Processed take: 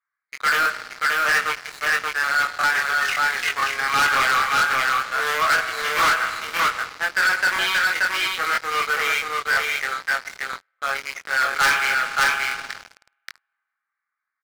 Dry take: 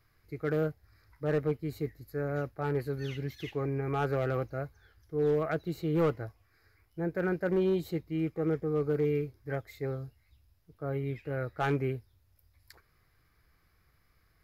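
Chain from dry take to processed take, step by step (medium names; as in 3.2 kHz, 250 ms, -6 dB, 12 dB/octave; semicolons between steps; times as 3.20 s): local Wiener filter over 15 samples; high-pass 1.3 kHz 24 dB/octave; spring tank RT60 2.6 s, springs 51 ms, chirp 60 ms, DRR 12 dB; waveshaping leveller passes 1; level-controlled noise filter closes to 2.3 kHz, open at -54.5 dBFS; doubling 22 ms -4.5 dB; on a send: delay 579 ms -3.5 dB; on the sum: waveshaping leveller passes 5; crackling interface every 0.99 s, samples 1024, repeat, from 0.61 s; trim +8.5 dB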